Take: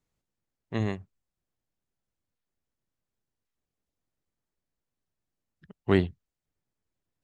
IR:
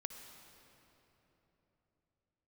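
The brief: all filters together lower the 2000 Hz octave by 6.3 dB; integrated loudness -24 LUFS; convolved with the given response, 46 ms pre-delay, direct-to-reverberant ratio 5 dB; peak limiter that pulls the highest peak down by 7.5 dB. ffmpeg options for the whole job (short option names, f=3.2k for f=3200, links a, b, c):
-filter_complex "[0:a]equalizer=f=2k:t=o:g=-7.5,alimiter=limit=-17dB:level=0:latency=1,asplit=2[a][b];[1:a]atrim=start_sample=2205,adelay=46[c];[b][c]afir=irnorm=-1:irlink=0,volume=-2.5dB[d];[a][d]amix=inputs=2:normalize=0,volume=9dB"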